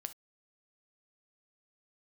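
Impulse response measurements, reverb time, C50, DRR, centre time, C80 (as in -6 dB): not exponential, 16.0 dB, 10.0 dB, 3 ms, 57.0 dB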